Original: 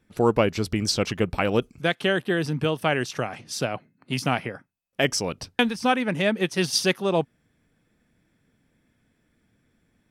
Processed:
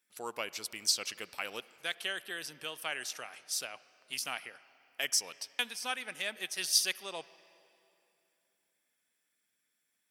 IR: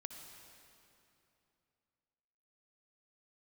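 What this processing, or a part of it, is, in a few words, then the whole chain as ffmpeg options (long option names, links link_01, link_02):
filtered reverb send: -filter_complex "[0:a]asplit=2[link_01][link_02];[link_02]highpass=220,lowpass=3100[link_03];[1:a]atrim=start_sample=2205[link_04];[link_03][link_04]afir=irnorm=-1:irlink=0,volume=-7dB[link_05];[link_01][link_05]amix=inputs=2:normalize=0,aderivative"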